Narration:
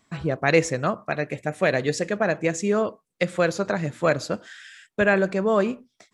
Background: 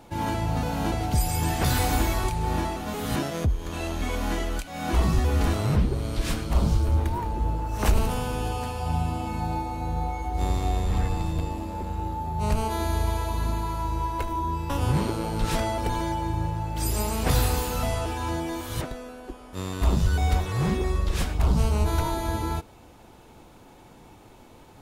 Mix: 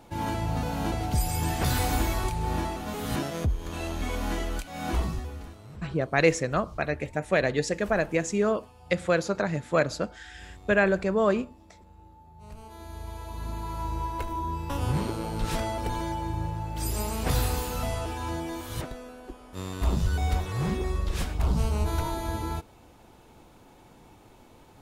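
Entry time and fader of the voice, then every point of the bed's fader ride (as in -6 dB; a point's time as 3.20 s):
5.70 s, -2.5 dB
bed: 4.90 s -2.5 dB
5.55 s -22 dB
12.41 s -22 dB
13.82 s -3.5 dB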